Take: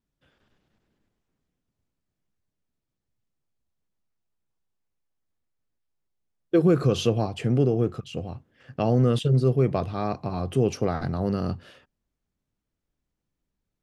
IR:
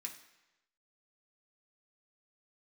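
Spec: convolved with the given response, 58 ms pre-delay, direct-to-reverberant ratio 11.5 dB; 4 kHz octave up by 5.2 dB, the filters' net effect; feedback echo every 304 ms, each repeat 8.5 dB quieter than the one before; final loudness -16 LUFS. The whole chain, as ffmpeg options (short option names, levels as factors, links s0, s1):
-filter_complex "[0:a]equalizer=f=4000:t=o:g=7,aecho=1:1:304|608|912|1216:0.376|0.143|0.0543|0.0206,asplit=2[s0][s1];[1:a]atrim=start_sample=2205,adelay=58[s2];[s1][s2]afir=irnorm=-1:irlink=0,volume=0.376[s3];[s0][s3]amix=inputs=2:normalize=0,volume=2.37"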